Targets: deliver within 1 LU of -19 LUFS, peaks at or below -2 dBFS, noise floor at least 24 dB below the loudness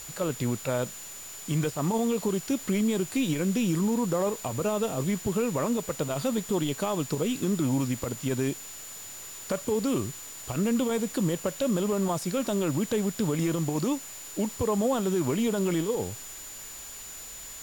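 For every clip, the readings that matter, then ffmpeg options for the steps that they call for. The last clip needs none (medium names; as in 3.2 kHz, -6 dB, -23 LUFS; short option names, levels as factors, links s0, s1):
steady tone 7 kHz; tone level -42 dBFS; noise floor -42 dBFS; noise floor target -53 dBFS; loudness -28.5 LUFS; peak level -17.5 dBFS; loudness target -19.0 LUFS
-> -af "bandreject=f=7000:w=30"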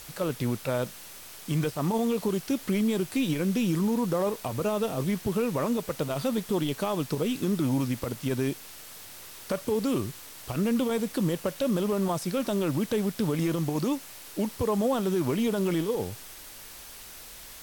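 steady tone not found; noise floor -45 dBFS; noise floor target -53 dBFS
-> -af "afftdn=nr=8:nf=-45"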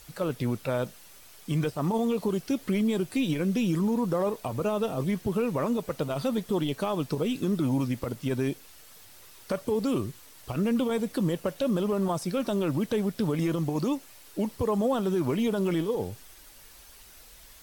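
noise floor -51 dBFS; noise floor target -53 dBFS
-> -af "afftdn=nr=6:nf=-51"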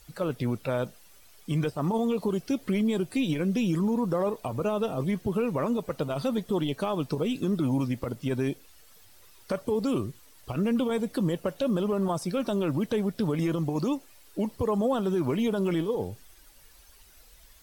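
noise floor -55 dBFS; loudness -28.5 LUFS; peak level -18.5 dBFS; loudness target -19.0 LUFS
-> -af "volume=2.99"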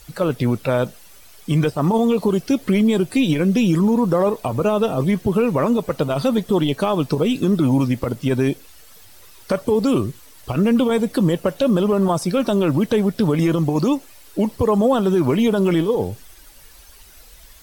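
loudness -19.0 LUFS; peak level -9.0 dBFS; noise floor -45 dBFS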